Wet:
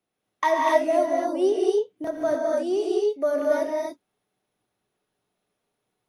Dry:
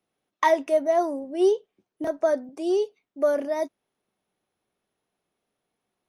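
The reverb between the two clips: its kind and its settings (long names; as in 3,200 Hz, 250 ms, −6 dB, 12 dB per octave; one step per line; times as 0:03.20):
reverb whose tail is shaped and stops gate 300 ms rising, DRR −2.5 dB
level −2.5 dB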